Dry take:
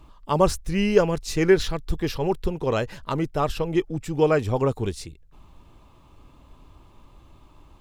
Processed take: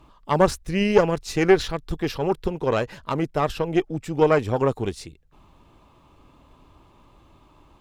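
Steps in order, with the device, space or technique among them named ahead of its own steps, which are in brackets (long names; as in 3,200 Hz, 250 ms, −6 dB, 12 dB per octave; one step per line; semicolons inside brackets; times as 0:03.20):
tube preamp driven hard (tube saturation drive 10 dB, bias 0.7; low-shelf EQ 110 Hz −8 dB; high-shelf EQ 4,600 Hz −5 dB)
level +5.5 dB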